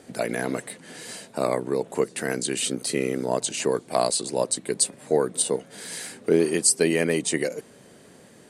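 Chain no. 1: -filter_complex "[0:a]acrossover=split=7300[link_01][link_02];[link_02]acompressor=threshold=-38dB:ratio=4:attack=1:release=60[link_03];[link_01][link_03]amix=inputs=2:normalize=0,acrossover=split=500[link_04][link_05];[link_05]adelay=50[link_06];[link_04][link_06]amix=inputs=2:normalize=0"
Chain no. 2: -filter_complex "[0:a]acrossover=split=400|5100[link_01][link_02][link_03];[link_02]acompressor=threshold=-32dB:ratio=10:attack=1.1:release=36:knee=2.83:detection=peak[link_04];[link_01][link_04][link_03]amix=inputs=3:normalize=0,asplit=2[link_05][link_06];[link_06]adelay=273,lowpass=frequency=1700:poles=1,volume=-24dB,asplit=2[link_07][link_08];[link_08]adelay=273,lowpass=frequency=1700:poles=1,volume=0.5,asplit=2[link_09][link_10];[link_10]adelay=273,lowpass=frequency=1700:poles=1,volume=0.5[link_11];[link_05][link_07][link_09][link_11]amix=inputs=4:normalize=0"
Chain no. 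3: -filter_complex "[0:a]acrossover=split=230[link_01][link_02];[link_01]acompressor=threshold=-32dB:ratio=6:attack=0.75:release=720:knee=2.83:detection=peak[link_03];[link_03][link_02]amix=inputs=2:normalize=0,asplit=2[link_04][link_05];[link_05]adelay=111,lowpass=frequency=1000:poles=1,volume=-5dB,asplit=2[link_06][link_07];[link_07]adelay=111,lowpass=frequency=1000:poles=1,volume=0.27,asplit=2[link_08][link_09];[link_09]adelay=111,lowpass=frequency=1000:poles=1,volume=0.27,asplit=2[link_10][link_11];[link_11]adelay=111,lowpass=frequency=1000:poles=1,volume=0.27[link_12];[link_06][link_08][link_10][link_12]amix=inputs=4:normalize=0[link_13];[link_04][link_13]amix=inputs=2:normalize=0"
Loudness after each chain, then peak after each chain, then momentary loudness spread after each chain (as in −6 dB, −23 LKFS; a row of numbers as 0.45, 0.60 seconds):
−27.5, −27.0, −24.5 LKFS; −9.5, −6.5, −4.5 dBFS; 12, 11, 13 LU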